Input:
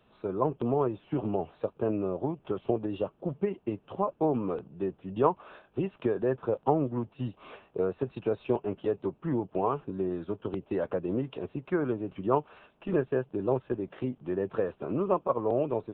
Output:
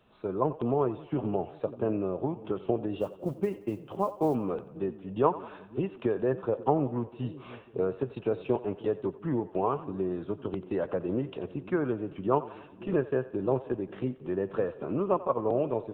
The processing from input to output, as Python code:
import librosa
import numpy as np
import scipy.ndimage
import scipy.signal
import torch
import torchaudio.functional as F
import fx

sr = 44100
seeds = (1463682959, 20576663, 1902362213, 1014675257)

y = fx.mod_noise(x, sr, seeds[0], snr_db=33, at=(2.98, 4.35))
y = fx.echo_split(y, sr, split_hz=400.0, low_ms=539, high_ms=89, feedback_pct=52, wet_db=-16)